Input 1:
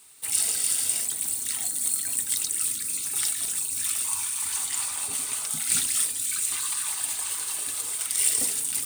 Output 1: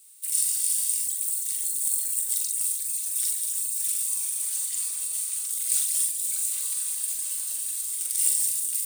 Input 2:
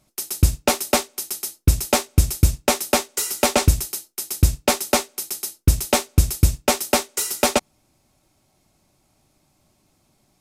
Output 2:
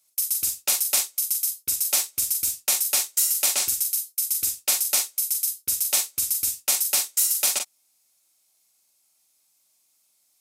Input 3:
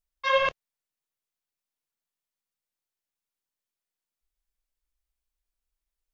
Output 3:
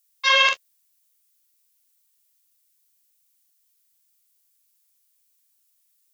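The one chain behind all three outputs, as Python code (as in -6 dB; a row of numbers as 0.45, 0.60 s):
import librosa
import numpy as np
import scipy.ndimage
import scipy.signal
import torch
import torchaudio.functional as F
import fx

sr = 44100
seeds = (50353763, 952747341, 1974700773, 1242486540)

y = np.diff(x, prepend=0.0)
y = fx.room_early_taps(y, sr, ms=(42, 53), db=(-5.5, -13.5))
y = librosa.util.normalize(y) * 10.0 ** (-6 / 20.0)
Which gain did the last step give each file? -2.5, +1.0, +19.0 dB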